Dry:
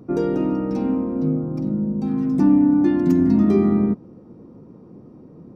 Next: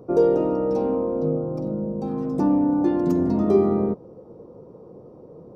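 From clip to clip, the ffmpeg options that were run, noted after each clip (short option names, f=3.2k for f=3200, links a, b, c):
-af "equalizer=f=250:t=o:w=1:g=-8,equalizer=f=500:t=o:w=1:g=12,equalizer=f=1k:t=o:w=1:g=4,equalizer=f=2k:t=o:w=1:g=-8,volume=-2dB"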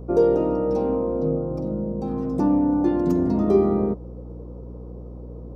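-af "aeval=exprs='val(0)+0.0158*(sin(2*PI*60*n/s)+sin(2*PI*2*60*n/s)/2+sin(2*PI*3*60*n/s)/3+sin(2*PI*4*60*n/s)/4+sin(2*PI*5*60*n/s)/5)':c=same"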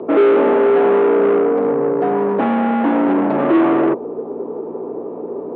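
-filter_complex "[0:a]asplit=2[a][b];[b]highpass=f=720:p=1,volume=29dB,asoftclip=type=tanh:threshold=-7dB[c];[a][c]amix=inputs=2:normalize=0,lowpass=f=1k:p=1,volume=-6dB,highpass=f=350:t=q:w=0.5412,highpass=f=350:t=q:w=1.307,lowpass=f=3.4k:t=q:w=0.5176,lowpass=f=3.4k:t=q:w=0.7071,lowpass=f=3.4k:t=q:w=1.932,afreqshift=-62,volume=3dB"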